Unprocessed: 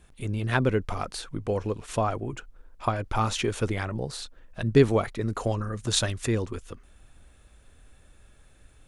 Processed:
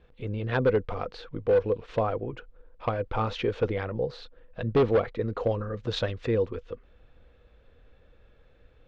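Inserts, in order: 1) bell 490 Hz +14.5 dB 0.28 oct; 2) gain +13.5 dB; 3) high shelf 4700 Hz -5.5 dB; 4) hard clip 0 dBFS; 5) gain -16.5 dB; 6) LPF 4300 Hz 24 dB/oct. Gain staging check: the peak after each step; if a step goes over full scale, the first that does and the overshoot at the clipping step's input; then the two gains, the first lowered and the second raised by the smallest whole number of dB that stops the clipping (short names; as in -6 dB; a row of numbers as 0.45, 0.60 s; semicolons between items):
-5.0, +8.5, +8.5, 0.0, -16.5, -15.5 dBFS; step 2, 8.5 dB; step 2 +4.5 dB, step 5 -7.5 dB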